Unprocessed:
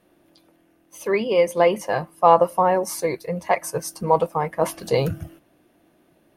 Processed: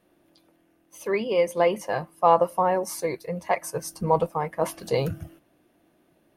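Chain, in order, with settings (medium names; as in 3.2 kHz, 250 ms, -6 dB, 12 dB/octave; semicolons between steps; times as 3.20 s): 3.81–4.31 s: bass shelf 130 Hz +11.5 dB; trim -4 dB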